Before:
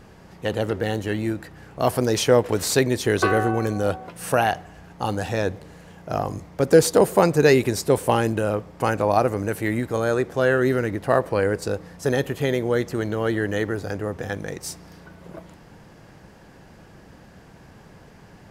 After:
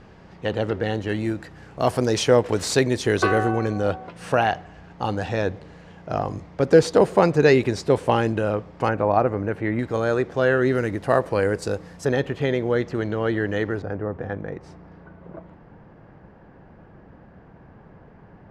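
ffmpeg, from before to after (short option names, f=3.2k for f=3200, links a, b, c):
-af "asetnsamples=n=441:p=0,asendcmd='1.09 lowpass f 7600;3.57 lowpass f 4600;8.89 lowpass f 2100;9.79 lowpass f 5000;10.75 lowpass f 9500;12.05 lowpass f 3900;13.82 lowpass f 1500',lowpass=4.5k"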